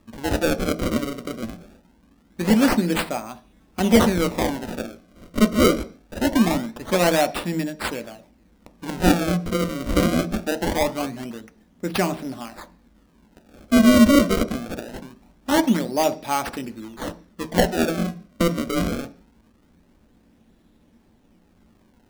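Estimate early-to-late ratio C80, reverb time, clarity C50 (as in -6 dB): 22.5 dB, 0.40 s, 18.0 dB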